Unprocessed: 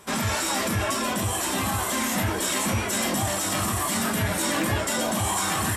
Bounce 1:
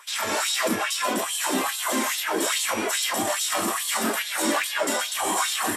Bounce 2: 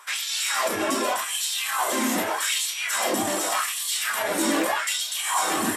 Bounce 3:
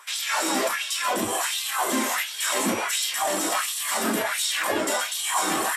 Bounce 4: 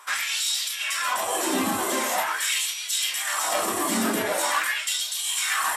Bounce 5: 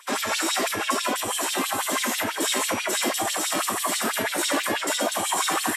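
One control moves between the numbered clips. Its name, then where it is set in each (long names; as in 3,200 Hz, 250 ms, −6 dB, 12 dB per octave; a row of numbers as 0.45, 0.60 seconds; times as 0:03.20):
auto-filter high-pass, speed: 2.4, 0.84, 1.4, 0.44, 6.1 Hertz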